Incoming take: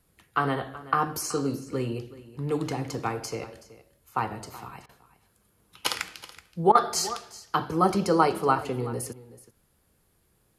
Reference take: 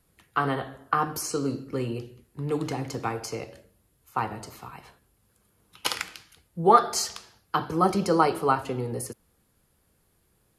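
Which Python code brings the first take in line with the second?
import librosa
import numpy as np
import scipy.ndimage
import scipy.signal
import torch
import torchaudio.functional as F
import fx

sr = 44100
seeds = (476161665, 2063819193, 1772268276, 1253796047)

y = fx.fix_interpolate(x, sr, at_s=(4.86, 6.72), length_ms=30.0)
y = fx.fix_echo_inverse(y, sr, delay_ms=376, level_db=-17.5)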